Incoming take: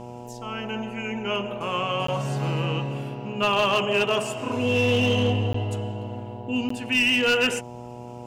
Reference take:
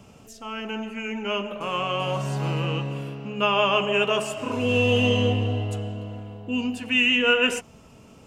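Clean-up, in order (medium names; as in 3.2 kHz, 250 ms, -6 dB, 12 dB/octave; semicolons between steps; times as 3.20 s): clip repair -15.5 dBFS; de-hum 121.4 Hz, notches 8; interpolate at 2.07/5.53/6.69 s, 14 ms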